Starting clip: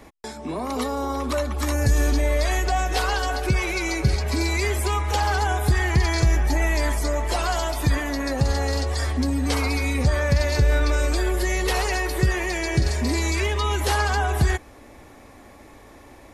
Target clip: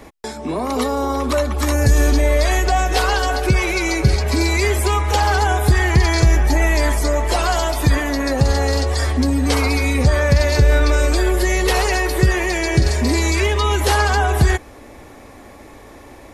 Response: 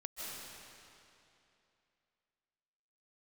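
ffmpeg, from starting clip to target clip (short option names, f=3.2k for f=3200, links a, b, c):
-af "equalizer=f=450:t=o:w=0.77:g=2,volume=5.5dB"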